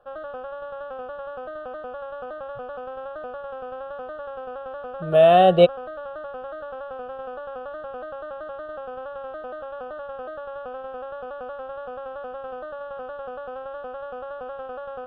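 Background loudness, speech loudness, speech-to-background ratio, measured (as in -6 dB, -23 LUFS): -35.5 LUFS, -16.0 LUFS, 19.5 dB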